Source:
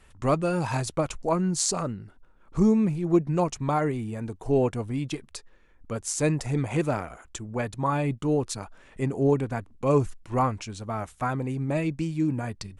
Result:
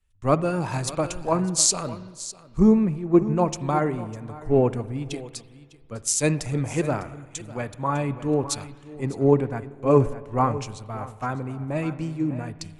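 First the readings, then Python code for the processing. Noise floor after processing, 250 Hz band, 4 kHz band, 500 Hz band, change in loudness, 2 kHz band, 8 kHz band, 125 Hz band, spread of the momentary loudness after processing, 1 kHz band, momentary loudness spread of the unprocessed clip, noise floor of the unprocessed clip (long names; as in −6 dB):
−50 dBFS, +2.5 dB, +5.5 dB, +3.0 dB, +3.0 dB, +1.0 dB, +7.0 dB, +1.5 dB, 15 LU, +2.0 dB, 11 LU, −56 dBFS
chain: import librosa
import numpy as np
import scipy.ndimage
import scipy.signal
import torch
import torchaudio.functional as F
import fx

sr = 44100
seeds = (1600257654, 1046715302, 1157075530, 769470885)

p1 = x + fx.echo_single(x, sr, ms=603, db=-12.0, dry=0)
p2 = fx.rev_spring(p1, sr, rt60_s=3.4, pass_ms=(56,), chirp_ms=35, drr_db=13.0)
p3 = fx.band_widen(p2, sr, depth_pct=70)
y = p3 * librosa.db_to_amplitude(1.0)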